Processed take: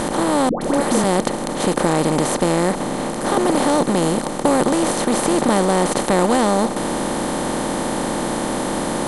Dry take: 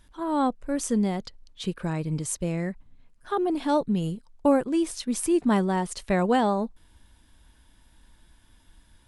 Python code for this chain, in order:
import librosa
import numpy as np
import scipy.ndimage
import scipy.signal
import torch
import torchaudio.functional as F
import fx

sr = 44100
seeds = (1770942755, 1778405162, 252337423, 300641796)

y = fx.bin_compress(x, sr, power=0.2)
y = fx.dispersion(y, sr, late='highs', ms=122.0, hz=800.0, at=(0.49, 1.04))